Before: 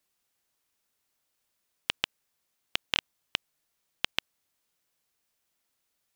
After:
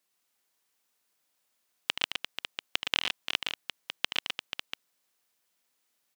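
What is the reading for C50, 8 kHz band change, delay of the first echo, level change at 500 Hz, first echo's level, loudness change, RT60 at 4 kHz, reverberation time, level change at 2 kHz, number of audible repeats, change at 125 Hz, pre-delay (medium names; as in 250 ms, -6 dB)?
no reverb, +2.5 dB, 76 ms, +1.0 dB, -9.5 dB, +0.5 dB, no reverb, no reverb, +2.5 dB, 4, -4.5 dB, no reverb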